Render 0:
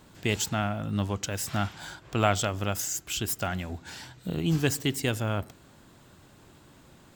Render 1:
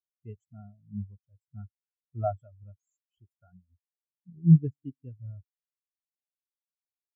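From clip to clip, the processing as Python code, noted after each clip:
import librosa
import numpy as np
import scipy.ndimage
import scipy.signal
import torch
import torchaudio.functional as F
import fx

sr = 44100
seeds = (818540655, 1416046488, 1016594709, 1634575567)

y = fx.spectral_expand(x, sr, expansion=4.0)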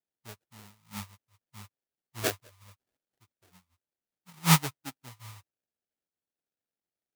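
y = fx.sample_hold(x, sr, seeds[0], rate_hz=1100.0, jitter_pct=20)
y = fx.tilt_eq(y, sr, slope=2.5)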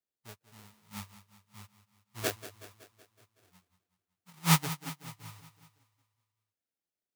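y = fx.echo_feedback(x, sr, ms=187, feedback_pct=57, wet_db=-14.5)
y = y * 10.0 ** (-3.0 / 20.0)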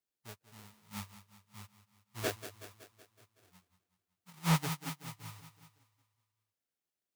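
y = 10.0 ** (-20.5 / 20.0) * np.tanh(x / 10.0 ** (-20.5 / 20.0))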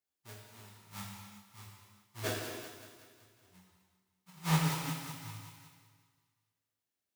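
y = fx.echo_feedback(x, sr, ms=257, feedback_pct=38, wet_db=-17)
y = fx.rev_gated(y, sr, seeds[1], gate_ms=440, shape='falling', drr_db=-2.5)
y = y * 10.0 ** (-3.5 / 20.0)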